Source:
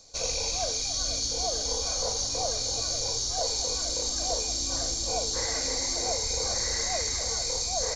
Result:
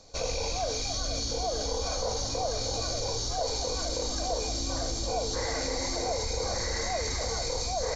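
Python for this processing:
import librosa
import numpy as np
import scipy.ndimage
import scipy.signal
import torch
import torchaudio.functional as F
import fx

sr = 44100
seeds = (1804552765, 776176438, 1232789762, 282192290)

p1 = fx.lowpass(x, sr, hz=1800.0, slope=6)
p2 = fx.over_compress(p1, sr, threshold_db=-37.0, ratio=-1.0)
y = p1 + (p2 * 10.0 ** (-2.5 / 20.0))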